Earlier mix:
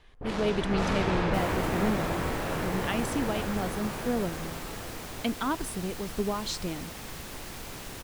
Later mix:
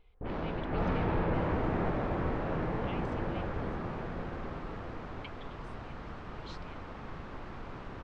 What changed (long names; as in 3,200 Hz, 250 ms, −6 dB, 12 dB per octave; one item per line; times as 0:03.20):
speech: add linear-phase brick-wall high-pass 2,000 Hz
second sound: add parametric band 1,200 Hz +6 dB 0.88 octaves
master: add head-to-tape spacing loss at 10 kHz 42 dB